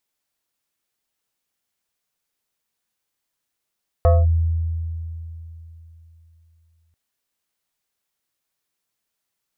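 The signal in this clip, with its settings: FM tone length 2.89 s, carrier 82.3 Hz, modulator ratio 7.23, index 0.93, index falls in 0.21 s linear, decay 3.37 s, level -9.5 dB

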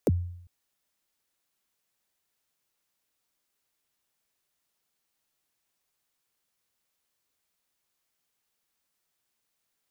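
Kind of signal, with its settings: kick drum length 0.40 s, from 590 Hz, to 88 Hz, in 33 ms, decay 0.71 s, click on, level -17 dB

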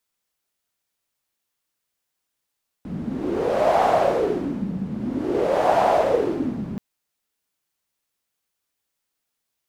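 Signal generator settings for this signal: wind-like swept noise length 3.93 s, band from 190 Hz, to 720 Hz, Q 5.4, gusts 2, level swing 11 dB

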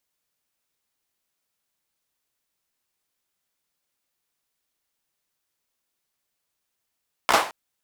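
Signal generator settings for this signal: hand clap length 0.22 s, apart 15 ms, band 870 Hz, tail 0.39 s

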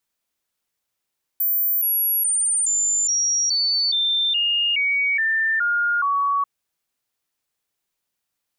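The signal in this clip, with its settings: stepped sine 14300 Hz down, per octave 3, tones 12, 0.42 s, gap 0.00 s -17.5 dBFS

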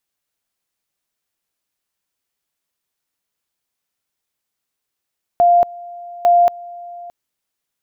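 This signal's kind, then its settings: two-level tone 698 Hz -8 dBFS, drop 22 dB, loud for 0.23 s, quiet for 0.62 s, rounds 2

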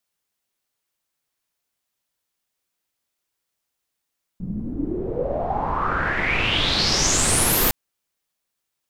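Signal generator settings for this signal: swept filtered noise pink, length 3.31 s lowpass, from 170 Hz, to 15000 Hz, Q 6.9, exponential, gain ramp +10 dB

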